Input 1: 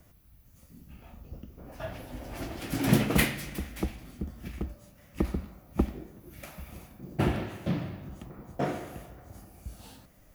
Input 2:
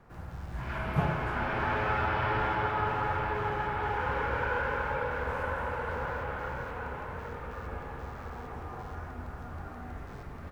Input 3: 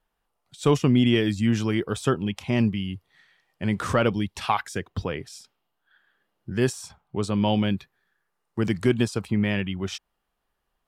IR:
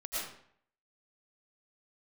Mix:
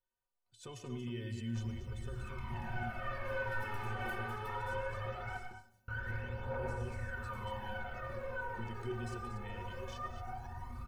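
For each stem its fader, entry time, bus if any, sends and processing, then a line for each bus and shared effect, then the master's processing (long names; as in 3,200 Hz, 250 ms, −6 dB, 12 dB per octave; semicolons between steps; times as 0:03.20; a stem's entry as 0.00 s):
−11.5 dB, 0.90 s, no bus, no send, no echo send, downward compressor 4 to 1, threshold −31 dBFS, peak gain reduction 13 dB
−3.0 dB, 1.55 s, muted 0:05.37–0:05.88, bus A, send −10.5 dB, echo send −19 dB, low-shelf EQ 170 Hz +7 dB; phase shifter 0.2 Hz, delay 2.7 ms, feedback 80%
−13.0 dB, 0.00 s, bus A, send −14.5 dB, echo send −9 dB, comb filter 2 ms, depth 35%
bus A: 0.0 dB, speech leveller 0.5 s; brickwall limiter −28 dBFS, peak gain reduction 13 dB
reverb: on, RT60 0.60 s, pre-delay 70 ms
echo: single-tap delay 233 ms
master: stiff-string resonator 110 Hz, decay 0.21 s, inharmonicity 0.03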